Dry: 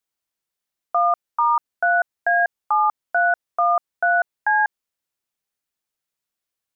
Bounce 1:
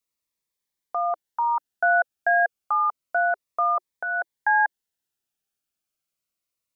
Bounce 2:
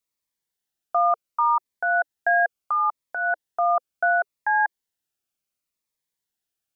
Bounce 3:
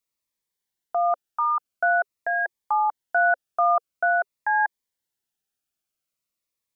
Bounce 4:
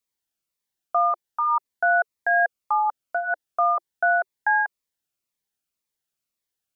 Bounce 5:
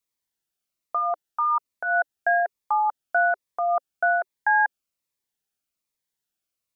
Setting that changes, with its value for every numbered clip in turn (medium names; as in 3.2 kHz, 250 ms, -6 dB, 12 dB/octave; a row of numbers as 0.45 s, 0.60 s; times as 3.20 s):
Shepard-style phaser, rate: 0.3 Hz, 0.7 Hz, 0.47 Hz, 1.9 Hz, 1.2 Hz